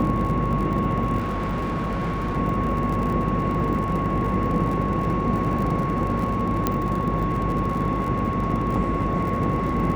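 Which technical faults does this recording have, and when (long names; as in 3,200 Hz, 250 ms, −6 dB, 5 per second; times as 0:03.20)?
mains buzz 50 Hz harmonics 11 −29 dBFS
surface crackle 61 per second −30 dBFS
whistle 1,100 Hz −27 dBFS
0:01.18–0:02.38: clipping −22.5 dBFS
0:06.67: click −7 dBFS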